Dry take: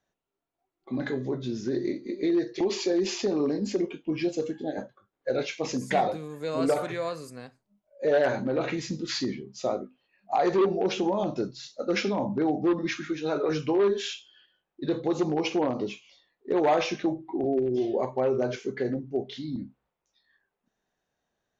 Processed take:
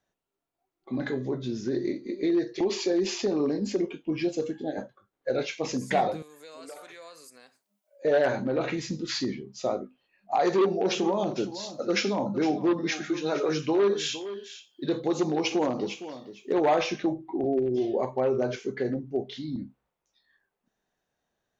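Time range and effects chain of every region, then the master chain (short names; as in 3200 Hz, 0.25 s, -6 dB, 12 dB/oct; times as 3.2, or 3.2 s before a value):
6.22–8.05 HPF 230 Hz + tilt +3 dB/oct + compressor 2:1, threshold -54 dBFS
10.4–16.58 HPF 110 Hz + high shelf 5200 Hz +9 dB + echo 0.461 s -13.5 dB
whole clip: dry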